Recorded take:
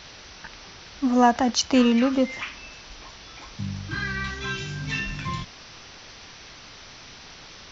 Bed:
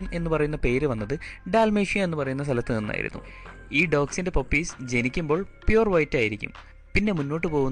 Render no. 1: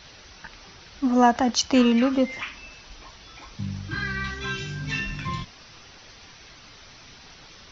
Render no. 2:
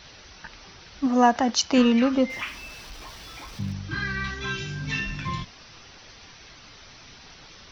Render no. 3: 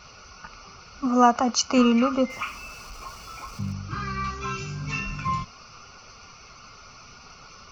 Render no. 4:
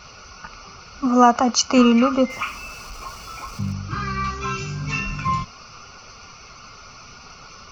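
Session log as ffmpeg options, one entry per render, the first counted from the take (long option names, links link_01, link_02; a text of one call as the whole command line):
ffmpeg -i in.wav -af "afftdn=noise_reduction=6:noise_floor=-45" out.wav
ffmpeg -i in.wav -filter_complex "[0:a]asettb=1/sr,asplit=3[link_01][link_02][link_03];[link_01]atrim=end=1.064[link_04];[link_02]atrim=start=1.06:end=1.78,asetpts=PTS-STARTPTS,afade=type=in:duration=0.004:curve=qsin,afade=type=out:start_time=0.716:duration=0.004:curve=qsin,lowshelf=frequency=110:gain=-8.5[link_05];[link_03]atrim=start=1.776[link_06];[link_04][link_05]acrossfade=duration=0.004:curve1=hsin:curve2=qsin[link_07];[link_07][link_06]acrossfade=duration=0.004:curve1=qsin:curve2=hsin,asettb=1/sr,asplit=3[link_08][link_09][link_10];[link_08]atrim=end=2.304[link_11];[link_09]atrim=start=2.3:end=3.73,asetpts=PTS-STARTPTS,afade=type=in:duration=0.004:curve=qsin,afade=type=out:start_time=1.426:duration=0.004:curve=qsin,aeval=exprs='val(0)+0.5*0.00668*sgn(val(0))':channel_layout=same[link_12];[link_10]atrim=start=3.726[link_13];[link_11][link_12]acrossfade=duration=0.004:curve1=hsin:curve2=qsin[link_14];[link_14][link_13]acrossfade=duration=0.004:curve1=qsin:curve2=hsin" out.wav
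ffmpeg -i in.wav -af "superequalizer=6b=0.501:10b=2.51:11b=0.316:13b=0.316:15b=1.41" out.wav
ffmpeg -i in.wav -af "volume=4.5dB,alimiter=limit=-2dB:level=0:latency=1" out.wav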